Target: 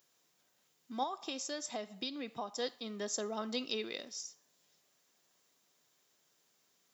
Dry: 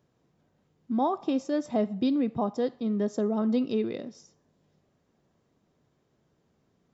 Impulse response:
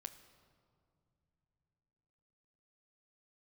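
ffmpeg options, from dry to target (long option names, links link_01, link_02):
-filter_complex "[0:a]aderivative,asettb=1/sr,asplit=3[link_01][link_02][link_03];[link_01]atrim=end=1.034[link_04];[link_02]atrim=start=1.03:end=2.59,asetpts=PTS-STARTPTS,afade=type=in:duration=0.004:curve=qsin,afade=type=out:start_time=1.556:duration=0.004:curve=qsin,acompressor=threshold=-50dB:ratio=5[link_05];[link_03]atrim=start=2.586[link_06];[link_04][link_05]acrossfade=duration=0.004:curve1=hsin:curve2=qsin[link_07];[link_07][link_06]acrossfade=duration=0.004:curve1=qsin:curve2=hsin,volume=13.5dB"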